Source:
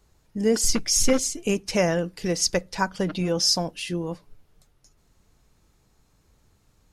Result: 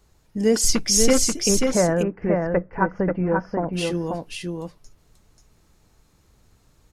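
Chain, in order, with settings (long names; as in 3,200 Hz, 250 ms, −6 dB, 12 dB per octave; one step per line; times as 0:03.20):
0:01.49–0:03.73: inverse Chebyshev low-pass filter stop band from 3,500 Hz, stop band 40 dB
single-tap delay 536 ms −4 dB
level +2.5 dB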